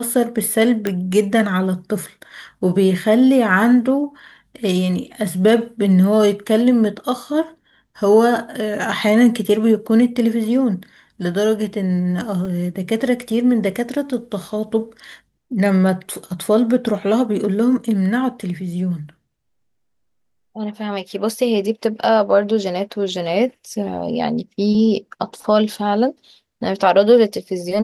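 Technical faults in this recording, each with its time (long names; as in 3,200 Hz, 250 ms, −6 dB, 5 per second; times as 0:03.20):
0:00.87: click −7 dBFS
0:12.45: drop-out 3.5 ms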